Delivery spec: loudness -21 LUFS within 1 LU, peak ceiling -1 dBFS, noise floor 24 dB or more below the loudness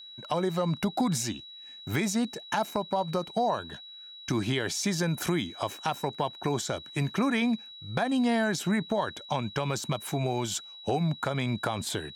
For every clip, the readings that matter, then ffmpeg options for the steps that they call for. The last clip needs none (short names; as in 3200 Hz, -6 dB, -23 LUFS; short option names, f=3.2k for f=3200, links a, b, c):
steady tone 3900 Hz; tone level -44 dBFS; loudness -30.0 LUFS; peak -13.5 dBFS; loudness target -21.0 LUFS
-> -af "bandreject=f=3.9k:w=30"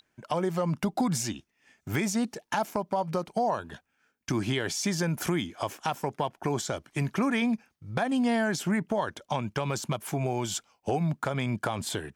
steady tone none; loudness -30.0 LUFS; peak -13.5 dBFS; loudness target -21.0 LUFS
-> -af "volume=9dB"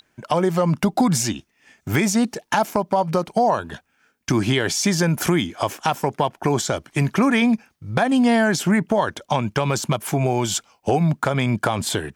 loudness -21.0 LUFS; peak -4.5 dBFS; noise floor -67 dBFS